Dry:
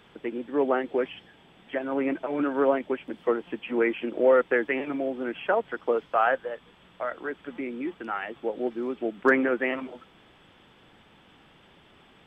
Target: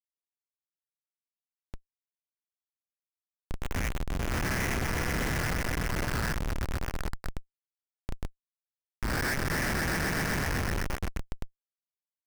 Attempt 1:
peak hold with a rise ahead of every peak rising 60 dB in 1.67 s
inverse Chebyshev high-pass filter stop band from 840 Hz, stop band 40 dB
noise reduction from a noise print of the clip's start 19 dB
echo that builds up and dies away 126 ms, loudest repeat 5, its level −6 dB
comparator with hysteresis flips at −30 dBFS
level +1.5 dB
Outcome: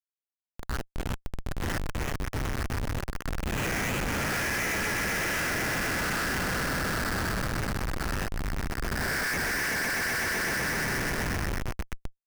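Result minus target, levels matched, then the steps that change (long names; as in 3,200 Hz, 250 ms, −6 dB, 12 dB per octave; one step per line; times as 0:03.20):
comparator with hysteresis: distortion −7 dB
change: comparator with hysteresis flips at −23.5 dBFS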